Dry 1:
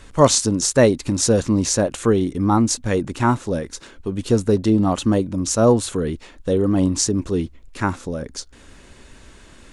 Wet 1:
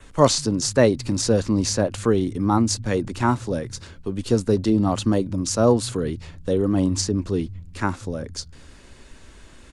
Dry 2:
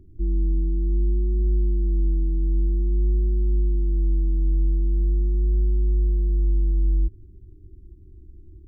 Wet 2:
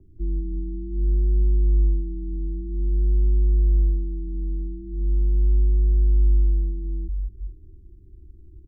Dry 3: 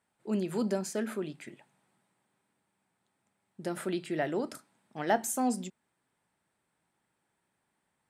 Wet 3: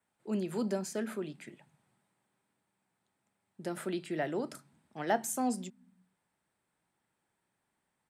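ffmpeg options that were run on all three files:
-filter_complex "[0:a]adynamicequalizer=threshold=0.00501:dfrequency=4700:dqfactor=4.4:tfrequency=4700:tqfactor=4.4:attack=5:release=100:ratio=0.375:range=3.5:mode=boostabove:tftype=bell,acrossover=split=110|610|3800[a][b][c][d];[a]aecho=1:1:200|320|392|435.2|461.1:0.631|0.398|0.251|0.158|0.1[e];[d]alimiter=limit=-12.5dB:level=0:latency=1:release=441[f];[e][b][c][f]amix=inputs=4:normalize=0,volume=-2.5dB"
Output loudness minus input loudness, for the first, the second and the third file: -2.5, 0.0, -2.5 LU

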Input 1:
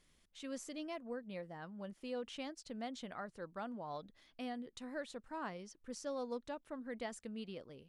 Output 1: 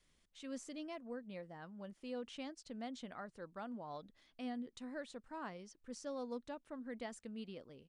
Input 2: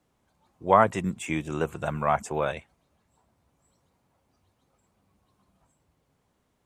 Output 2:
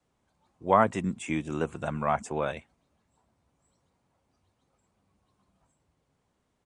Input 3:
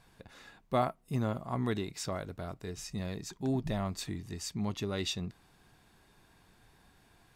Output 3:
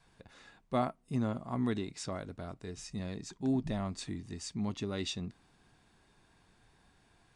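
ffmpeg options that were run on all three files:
-af "adynamicequalizer=threshold=0.00398:dfrequency=250:dqfactor=2.7:tfrequency=250:tqfactor=2.7:attack=5:release=100:ratio=0.375:range=3:mode=boostabove:tftype=bell,aresample=22050,aresample=44100,volume=-3dB"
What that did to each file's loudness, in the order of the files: -2.0, -2.5, -1.0 LU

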